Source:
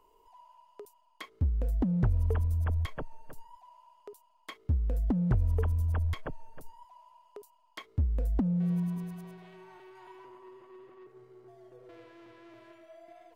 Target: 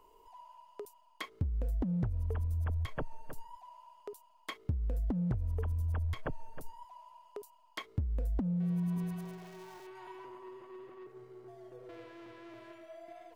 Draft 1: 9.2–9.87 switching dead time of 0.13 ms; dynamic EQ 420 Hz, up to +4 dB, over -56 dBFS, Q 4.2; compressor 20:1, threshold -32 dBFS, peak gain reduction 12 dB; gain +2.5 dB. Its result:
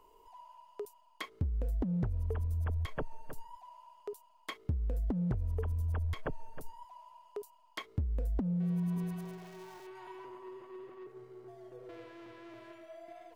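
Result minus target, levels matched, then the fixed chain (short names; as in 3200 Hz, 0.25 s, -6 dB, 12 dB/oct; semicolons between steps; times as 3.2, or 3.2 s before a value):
500 Hz band +3.0 dB
9.2–9.87 switching dead time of 0.13 ms; dynamic EQ 110 Hz, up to +4 dB, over -56 dBFS, Q 4.2; compressor 20:1, threshold -32 dBFS, peak gain reduction 13.5 dB; gain +2.5 dB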